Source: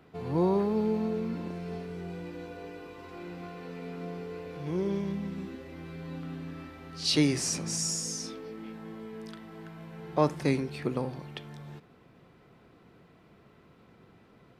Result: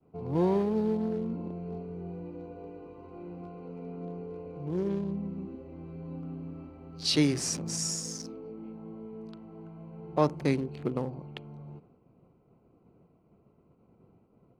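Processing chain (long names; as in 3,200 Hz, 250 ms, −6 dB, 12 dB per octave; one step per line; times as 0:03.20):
adaptive Wiener filter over 25 samples
downward expander −54 dBFS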